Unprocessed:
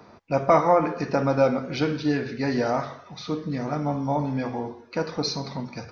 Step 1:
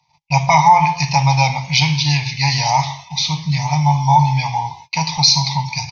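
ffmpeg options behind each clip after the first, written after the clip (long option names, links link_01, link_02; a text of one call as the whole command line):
ffmpeg -i in.wav -af "agate=range=-27dB:threshold=-46dB:ratio=16:detection=peak,firequalizer=gain_entry='entry(100,0);entry(150,9);entry(220,-22);entry(450,-30);entry(880,13);entry(1400,-26);entry(2100,10);entry(6300,15);entry(9400,3)':delay=0.05:min_phase=1,alimiter=level_in=9.5dB:limit=-1dB:release=50:level=0:latency=1,volume=-1dB" out.wav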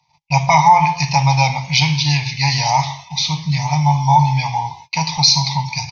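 ffmpeg -i in.wav -af anull out.wav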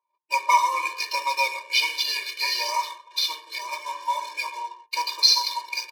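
ffmpeg -i in.wav -af "bandreject=frequency=115.2:width_type=h:width=4,bandreject=frequency=230.4:width_type=h:width=4,bandreject=frequency=345.6:width_type=h:width=4,bandreject=frequency=460.8:width_type=h:width=4,bandreject=frequency=576:width_type=h:width=4,bandreject=frequency=691.2:width_type=h:width=4,bandreject=frequency=806.4:width_type=h:width=4,bandreject=frequency=921.6:width_type=h:width=4,bandreject=frequency=1036.8:width_type=h:width=4,bandreject=frequency=1152:width_type=h:width=4,bandreject=frequency=1267.2:width_type=h:width=4,bandreject=frequency=1382.4:width_type=h:width=4,bandreject=frequency=1497.6:width_type=h:width=4,bandreject=frequency=1612.8:width_type=h:width=4,bandreject=frequency=1728:width_type=h:width=4,adynamicsmooth=sensitivity=6.5:basefreq=860,afftfilt=real='re*eq(mod(floor(b*sr/1024/310),2),1)':imag='im*eq(mod(floor(b*sr/1024/310),2),1)':win_size=1024:overlap=0.75,volume=-2.5dB" out.wav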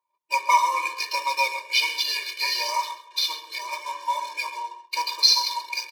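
ffmpeg -i in.wav -af "aecho=1:1:133:0.158" out.wav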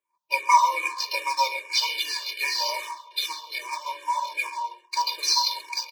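ffmpeg -i in.wav -filter_complex "[0:a]asplit=2[link_01][link_02];[link_02]afreqshift=-2.5[link_03];[link_01][link_03]amix=inputs=2:normalize=1,volume=2.5dB" out.wav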